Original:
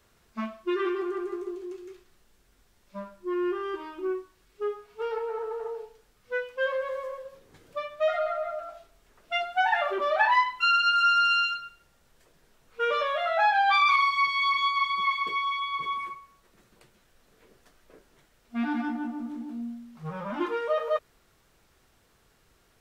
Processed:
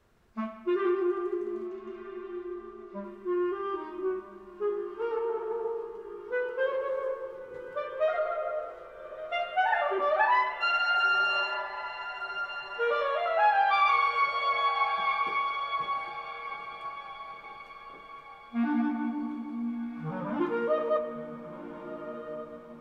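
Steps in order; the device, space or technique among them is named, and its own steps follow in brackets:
0:01.67–0:03.04: Bessel low-pass filter 5,000 Hz
through cloth (high-shelf EQ 2,400 Hz −11.5 dB)
feedback delay with all-pass diffusion 1,378 ms, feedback 43%, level −11 dB
spring reverb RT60 2.2 s, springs 34/39/44 ms, chirp 45 ms, DRR 7.5 dB

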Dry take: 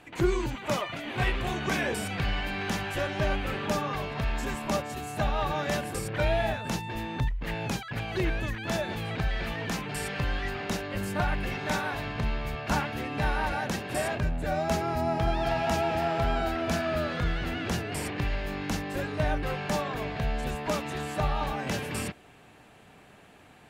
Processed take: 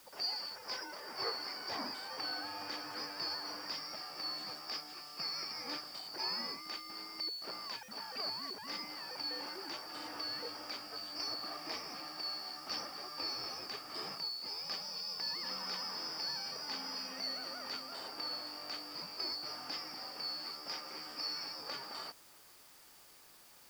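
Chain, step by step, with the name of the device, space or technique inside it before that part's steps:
split-band scrambled radio (band-splitting scrambler in four parts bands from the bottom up 2341; band-pass filter 320–3,300 Hz; white noise bed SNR 18 dB)
level −6.5 dB

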